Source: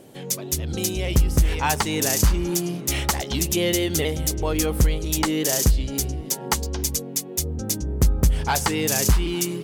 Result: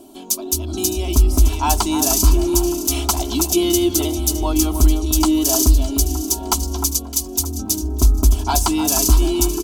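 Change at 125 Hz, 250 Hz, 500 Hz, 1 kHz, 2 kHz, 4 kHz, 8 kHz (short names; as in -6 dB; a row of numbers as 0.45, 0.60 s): +3.0, +7.0, +3.5, +4.5, -5.5, +3.5, +5.5 dB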